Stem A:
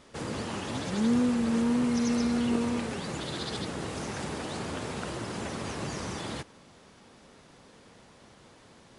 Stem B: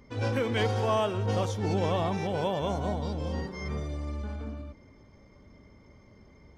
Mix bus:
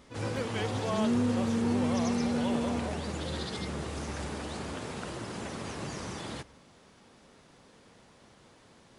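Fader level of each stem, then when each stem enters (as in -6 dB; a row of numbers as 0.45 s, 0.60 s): -3.0 dB, -6.5 dB; 0.00 s, 0.00 s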